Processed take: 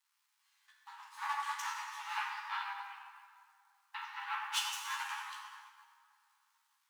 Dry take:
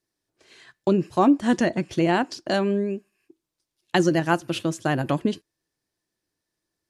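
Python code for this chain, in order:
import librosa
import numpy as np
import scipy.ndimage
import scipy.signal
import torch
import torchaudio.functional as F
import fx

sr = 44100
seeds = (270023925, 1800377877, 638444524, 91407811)

y = fx.lower_of_two(x, sr, delay_ms=9.6)
y = fx.lowpass(y, sr, hz=3400.0, slope=24, at=(2.16, 4.52))
y = fx.level_steps(y, sr, step_db=17)
y = fx.dmg_crackle(y, sr, seeds[0], per_s=340.0, level_db=-54.0)
y = fx.brickwall_highpass(y, sr, low_hz=800.0)
y = fx.doubler(y, sr, ms=15.0, db=-5)
y = fx.rev_plate(y, sr, seeds[1], rt60_s=3.0, hf_ratio=0.6, predelay_ms=0, drr_db=-4.0)
y = fx.upward_expand(y, sr, threshold_db=-55.0, expansion=1.5)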